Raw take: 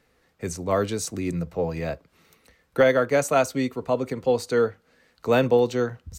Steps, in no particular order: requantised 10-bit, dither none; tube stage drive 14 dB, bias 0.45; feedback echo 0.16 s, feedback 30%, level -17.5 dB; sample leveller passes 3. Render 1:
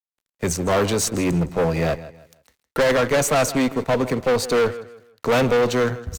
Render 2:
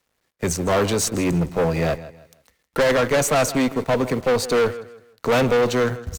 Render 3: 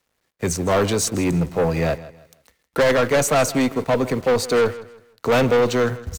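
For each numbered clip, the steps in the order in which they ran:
sample leveller > requantised > feedback echo > tube stage; requantised > sample leveller > feedback echo > tube stage; requantised > tube stage > sample leveller > feedback echo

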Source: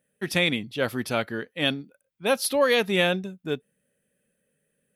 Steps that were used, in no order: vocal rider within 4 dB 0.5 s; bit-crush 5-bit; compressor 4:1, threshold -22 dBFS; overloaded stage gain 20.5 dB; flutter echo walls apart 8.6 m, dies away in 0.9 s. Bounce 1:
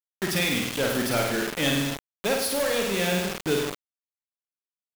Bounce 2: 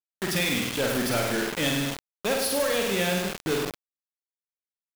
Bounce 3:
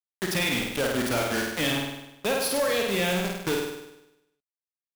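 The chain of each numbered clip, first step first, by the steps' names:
overloaded stage > compressor > flutter echo > vocal rider > bit-crush; vocal rider > overloaded stage > flutter echo > compressor > bit-crush; bit-crush > vocal rider > compressor > flutter echo > overloaded stage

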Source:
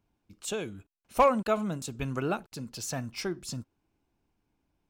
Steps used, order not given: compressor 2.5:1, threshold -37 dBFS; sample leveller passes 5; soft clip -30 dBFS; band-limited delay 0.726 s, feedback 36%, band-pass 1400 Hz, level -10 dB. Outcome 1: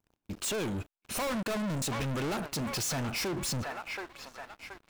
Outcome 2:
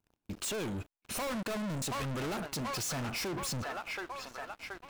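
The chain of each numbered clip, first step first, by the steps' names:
soft clip > band-limited delay > compressor > sample leveller; band-limited delay > soft clip > sample leveller > compressor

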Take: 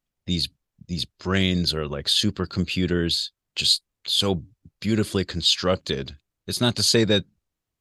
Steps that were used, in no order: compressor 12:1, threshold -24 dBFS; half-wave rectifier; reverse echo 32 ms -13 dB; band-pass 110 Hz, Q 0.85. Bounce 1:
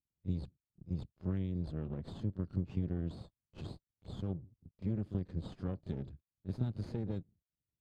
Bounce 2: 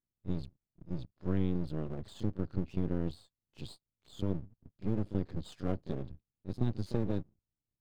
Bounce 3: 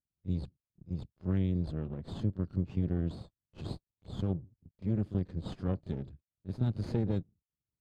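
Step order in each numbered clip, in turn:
reverse echo > half-wave rectifier > compressor > band-pass; band-pass > compressor > reverse echo > half-wave rectifier; reverse echo > half-wave rectifier > band-pass > compressor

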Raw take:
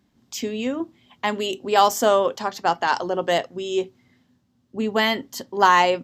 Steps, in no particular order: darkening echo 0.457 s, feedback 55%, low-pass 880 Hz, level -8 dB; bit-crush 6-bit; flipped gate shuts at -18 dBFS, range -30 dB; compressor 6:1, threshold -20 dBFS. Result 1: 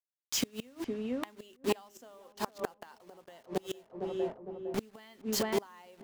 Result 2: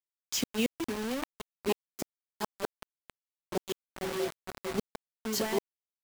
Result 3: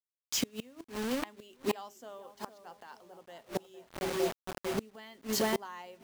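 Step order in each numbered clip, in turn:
compressor > bit-crush > darkening echo > flipped gate; compressor > darkening echo > flipped gate > bit-crush; darkening echo > bit-crush > flipped gate > compressor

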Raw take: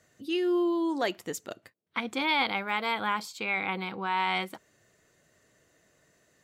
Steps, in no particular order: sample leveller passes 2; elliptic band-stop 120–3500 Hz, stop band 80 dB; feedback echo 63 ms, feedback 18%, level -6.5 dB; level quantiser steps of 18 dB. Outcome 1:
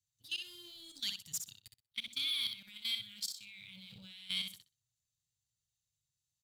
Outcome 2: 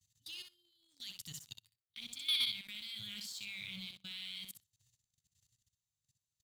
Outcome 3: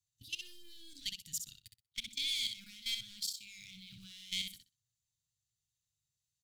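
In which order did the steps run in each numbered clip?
elliptic band-stop > sample leveller > level quantiser > feedback echo; elliptic band-stop > level quantiser > feedback echo > sample leveller; sample leveller > elliptic band-stop > level quantiser > feedback echo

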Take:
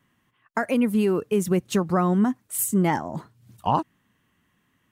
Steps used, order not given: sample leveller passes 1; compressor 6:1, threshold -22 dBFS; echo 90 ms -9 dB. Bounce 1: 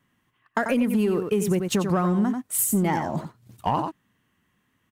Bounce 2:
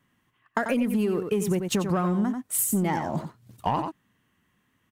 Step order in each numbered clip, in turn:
echo > compressor > sample leveller; sample leveller > echo > compressor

